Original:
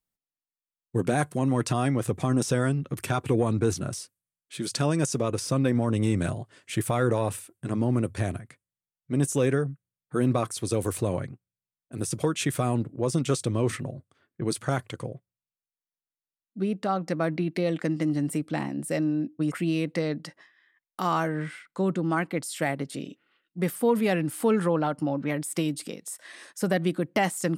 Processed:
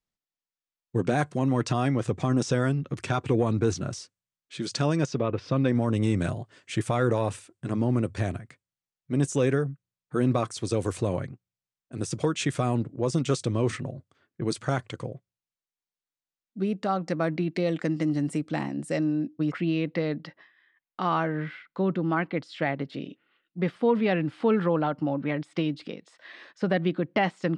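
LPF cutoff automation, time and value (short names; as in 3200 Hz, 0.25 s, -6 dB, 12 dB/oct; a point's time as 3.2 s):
LPF 24 dB/oct
4.94 s 7000 Hz
5.33 s 2800 Hz
5.76 s 7700 Hz
19.2 s 7700 Hz
19.65 s 4100 Hz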